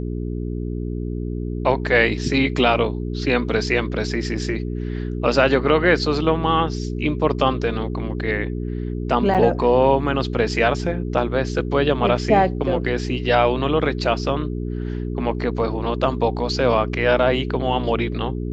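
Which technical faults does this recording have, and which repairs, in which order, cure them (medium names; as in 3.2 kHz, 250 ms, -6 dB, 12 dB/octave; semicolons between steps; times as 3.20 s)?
hum 60 Hz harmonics 7 -26 dBFS
9.34–9.35 s: dropout 7.3 ms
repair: de-hum 60 Hz, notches 7; interpolate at 9.34 s, 7.3 ms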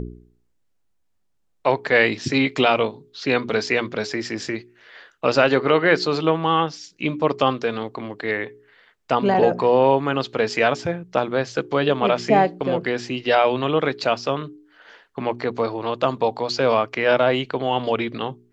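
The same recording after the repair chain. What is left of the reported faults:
nothing left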